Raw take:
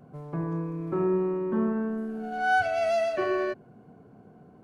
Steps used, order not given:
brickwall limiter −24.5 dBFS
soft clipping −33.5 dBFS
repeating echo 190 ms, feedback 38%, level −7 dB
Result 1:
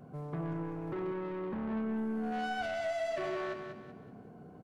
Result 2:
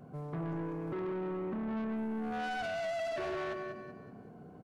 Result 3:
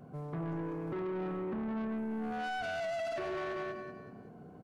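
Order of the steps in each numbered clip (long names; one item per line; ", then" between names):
brickwall limiter, then soft clipping, then repeating echo
brickwall limiter, then repeating echo, then soft clipping
repeating echo, then brickwall limiter, then soft clipping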